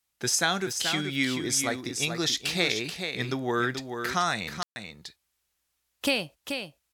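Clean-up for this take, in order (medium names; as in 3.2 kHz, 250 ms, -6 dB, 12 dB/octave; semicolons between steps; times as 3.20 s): clip repair -11.5 dBFS; room tone fill 4.63–4.76 s; inverse comb 432 ms -7 dB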